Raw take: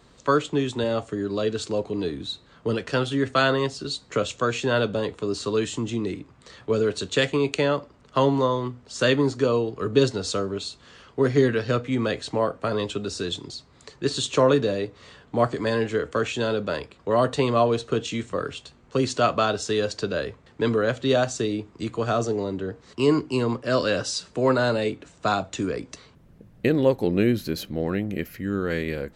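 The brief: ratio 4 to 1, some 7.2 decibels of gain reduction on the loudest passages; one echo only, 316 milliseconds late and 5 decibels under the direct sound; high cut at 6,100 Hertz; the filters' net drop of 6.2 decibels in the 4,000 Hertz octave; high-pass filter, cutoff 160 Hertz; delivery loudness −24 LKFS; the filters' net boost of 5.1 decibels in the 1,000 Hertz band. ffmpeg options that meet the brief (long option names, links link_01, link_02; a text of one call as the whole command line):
ffmpeg -i in.wav -af "highpass=160,lowpass=6100,equalizer=frequency=1000:width_type=o:gain=7,equalizer=frequency=4000:width_type=o:gain=-7.5,acompressor=threshold=-21dB:ratio=4,aecho=1:1:316:0.562,volume=2.5dB" out.wav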